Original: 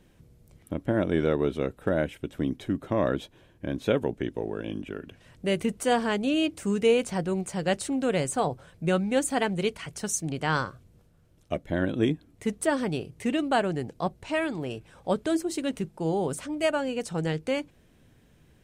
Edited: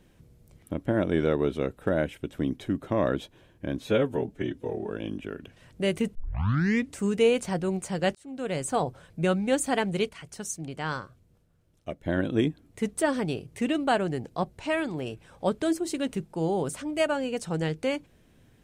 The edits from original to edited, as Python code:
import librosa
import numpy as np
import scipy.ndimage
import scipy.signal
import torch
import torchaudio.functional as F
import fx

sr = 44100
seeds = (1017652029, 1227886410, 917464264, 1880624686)

y = fx.edit(x, sr, fx.stretch_span(start_s=3.82, length_s=0.72, factor=1.5),
    fx.tape_start(start_s=5.79, length_s=0.84),
    fx.fade_in_span(start_s=7.79, length_s=0.61),
    fx.clip_gain(start_s=9.73, length_s=1.97, db=-5.5), tone=tone)